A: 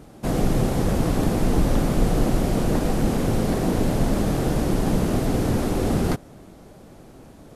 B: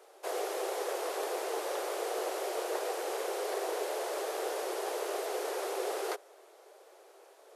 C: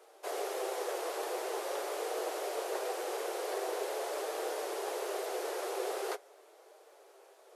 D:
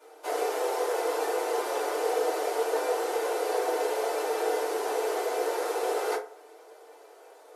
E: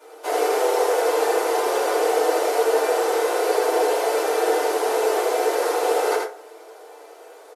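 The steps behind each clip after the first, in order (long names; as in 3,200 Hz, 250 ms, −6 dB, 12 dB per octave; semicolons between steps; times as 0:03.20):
Butterworth high-pass 380 Hz 72 dB per octave; level −6 dB
flanger 0.45 Hz, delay 6.2 ms, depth 2.6 ms, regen −56%; level +2.5 dB
feedback delay network reverb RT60 0.38 s, low-frequency decay 0.7×, high-frequency decay 0.55×, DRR −9 dB; level −2.5 dB
single-tap delay 81 ms −3.5 dB; level +6.5 dB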